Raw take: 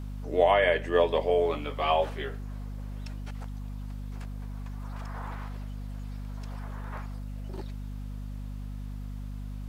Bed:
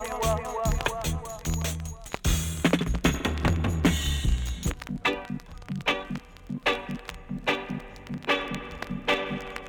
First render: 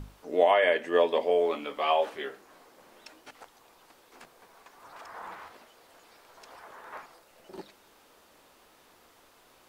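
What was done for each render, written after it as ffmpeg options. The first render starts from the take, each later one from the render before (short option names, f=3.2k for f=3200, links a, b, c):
-af "bandreject=f=50:t=h:w=6,bandreject=f=100:t=h:w=6,bandreject=f=150:t=h:w=6,bandreject=f=200:t=h:w=6,bandreject=f=250:t=h:w=6,bandreject=f=300:t=h:w=6"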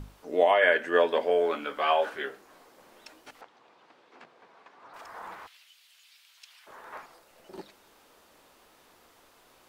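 -filter_complex "[0:a]asettb=1/sr,asplit=3[a][b][c];[a]atrim=end=0.614[d];[b]atrim=start=0.61:end=2.26,asetpts=PTS-STARTPTS,afade=t=in:d=0.004:c=qsin,afade=t=out:st=1.646:d=0.004:c=qsin,equalizer=f=1.5k:t=o:w=0.31:g=14[e];[c]atrim=start=2.256[f];[d][e]acrossfade=d=0.004:c1=hsin:c2=qsin[g];[g][f]acrossfade=d=0.004:c1=qsin:c2=hsin,asettb=1/sr,asplit=3[h][i][j];[h]atrim=end=3.414[k];[i]atrim=start=3.41:end=4.94,asetpts=PTS-STARTPTS,afade=t=in:d=0.004:c=qsin,afade=t=out:st=1.526:d=0.004:c=qsin,highpass=140,lowpass=3.5k[l];[j]atrim=start=4.936[m];[k][l]acrossfade=d=0.004:c1=hsin:c2=qsin[n];[n][m]acrossfade=d=0.004:c1=qsin:c2=hsin,asplit=3[o][p][q];[o]afade=t=out:st=5.46:d=0.02[r];[p]highpass=f=2.9k:t=q:w=1.9,afade=t=in:st=5.46:d=0.02,afade=t=out:st=6.66:d=0.02[s];[q]afade=t=in:st=6.66:d=0.02[t];[r][s][t]amix=inputs=3:normalize=0"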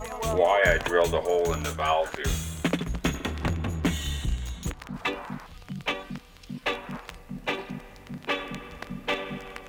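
-filter_complex "[1:a]volume=-3.5dB[a];[0:a][a]amix=inputs=2:normalize=0"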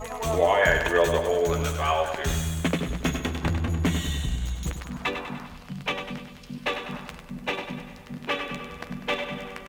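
-filter_complex "[0:a]asplit=2[a][b];[b]adelay=12,volume=-11.5dB[c];[a][c]amix=inputs=2:normalize=0,aecho=1:1:99|198|297|396|495|594|693:0.398|0.223|0.125|0.0699|0.0392|0.0219|0.0123"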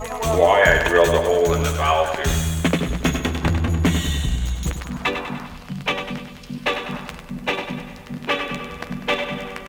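-af "volume=6dB"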